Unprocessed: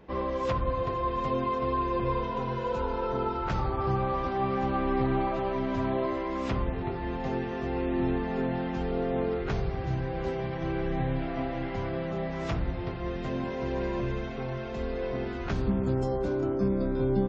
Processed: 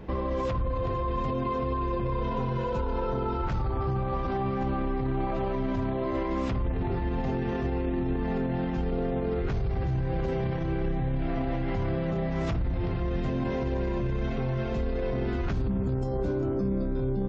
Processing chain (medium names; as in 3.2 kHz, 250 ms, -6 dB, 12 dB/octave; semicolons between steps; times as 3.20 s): bass shelf 210 Hz +10 dB; peak limiter -27.5 dBFS, peak gain reduction 17.5 dB; trim +6 dB